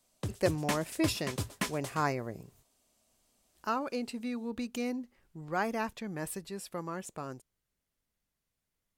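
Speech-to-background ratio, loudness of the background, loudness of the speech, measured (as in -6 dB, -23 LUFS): 2.5 dB, -38.0 LUFS, -35.5 LUFS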